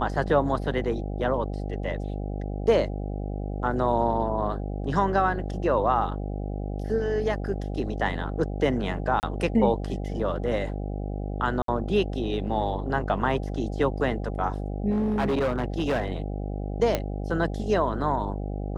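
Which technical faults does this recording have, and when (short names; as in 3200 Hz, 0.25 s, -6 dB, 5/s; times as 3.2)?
buzz 50 Hz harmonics 16 -31 dBFS
9.2–9.23 gap 29 ms
11.62–11.68 gap 63 ms
14.9–16.08 clipped -21 dBFS
16.95 pop -10 dBFS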